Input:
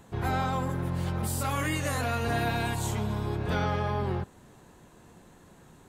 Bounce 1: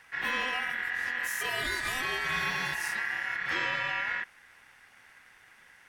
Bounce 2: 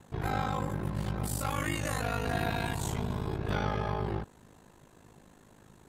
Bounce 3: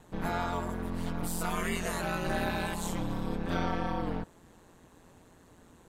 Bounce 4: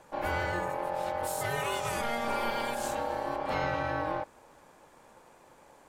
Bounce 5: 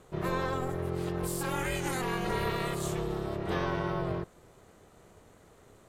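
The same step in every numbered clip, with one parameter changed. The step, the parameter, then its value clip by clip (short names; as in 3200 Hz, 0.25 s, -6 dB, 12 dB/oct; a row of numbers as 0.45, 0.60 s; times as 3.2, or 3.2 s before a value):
ring modulator, frequency: 1800, 26, 87, 700, 260 Hz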